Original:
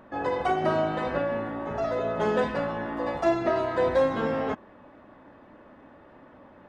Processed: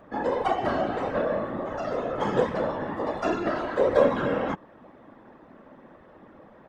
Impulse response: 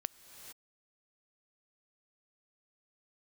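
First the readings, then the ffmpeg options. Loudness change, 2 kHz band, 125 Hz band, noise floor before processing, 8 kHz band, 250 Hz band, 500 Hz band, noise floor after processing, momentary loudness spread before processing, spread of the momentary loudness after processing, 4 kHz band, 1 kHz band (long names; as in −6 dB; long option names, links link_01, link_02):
+0.5 dB, −0.5 dB, −0.5 dB, −53 dBFS, can't be measured, +0.5 dB, +0.5 dB, −53 dBFS, 7 LU, 8 LU, 0.0 dB, 0.0 dB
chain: -af "aecho=1:1:3.7:0.5,afftfilt=real='hypot(re,im)*cos(2*PI*random(0))':imag='hypot(re,im)*sin(2*PI*random(1))':win_size=512:overlap=0.75,volume=5dB"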